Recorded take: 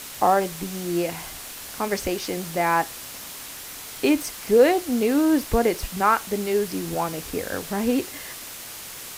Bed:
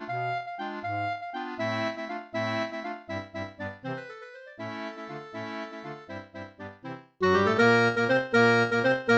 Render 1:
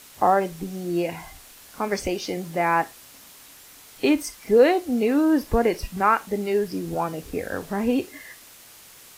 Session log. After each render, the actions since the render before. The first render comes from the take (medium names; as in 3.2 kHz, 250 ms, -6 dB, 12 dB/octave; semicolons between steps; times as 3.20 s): noise print and reduce 10 dB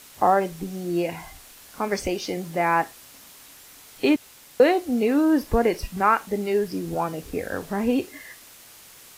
4.16–4.60 s: room tone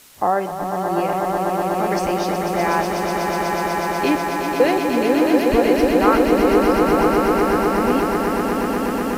echo with a slow build-up 123 ms, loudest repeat 8, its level -6 dB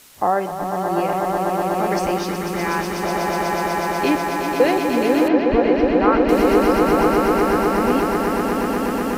2.18–3.03 s: peaking EQ 660 Hz -10.5 dB 0.66 oct; 5.28–6.29 s: distance through air 240 m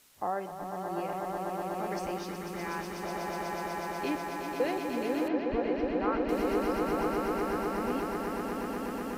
trim -14 dB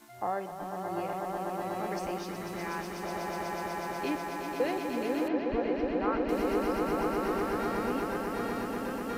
add bed -19 dB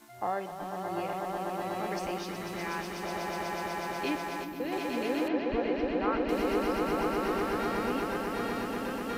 4.44–4.72 s: time-frequency box 360–11000 Hz -8 dB; dynamic bell 3.2 kHz, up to +5 dB, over -54 dBFS, Q 1